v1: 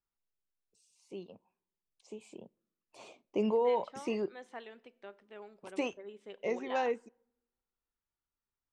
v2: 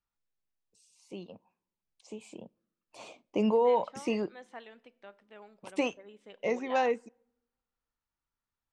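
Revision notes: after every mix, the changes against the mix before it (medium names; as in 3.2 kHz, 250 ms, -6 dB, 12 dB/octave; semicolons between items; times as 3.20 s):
first voice +5.0 dB; master: add peaking EQ 390 Hz -7.5 dB 0.24 oct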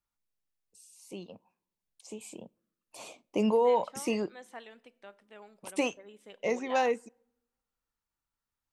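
master: remove distance through air 93 m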